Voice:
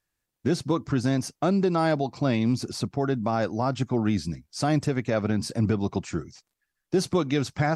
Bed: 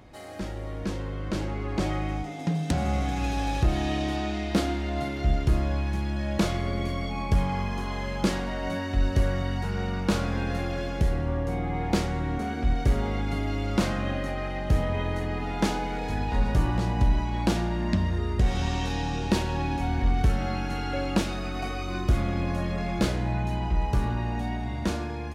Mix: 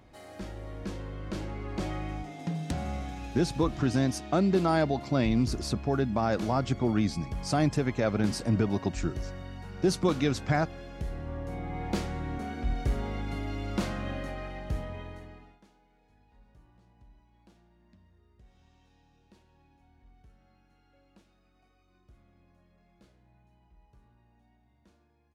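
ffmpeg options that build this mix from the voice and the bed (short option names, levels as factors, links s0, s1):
-filter_complex "[0:a]adelay=2900,volume=0.794[s0];[1:a]volume=1.12,afade=t=out:st=2.65:d=0.68:silence=0.446684,afade=t=in:st=10.88:d=1:silence=0.446684,afade=t=out:st=14.24:d=1.36:silence=0.0316228[s1];[s0][s1]amix=inputs=2:normalize=0"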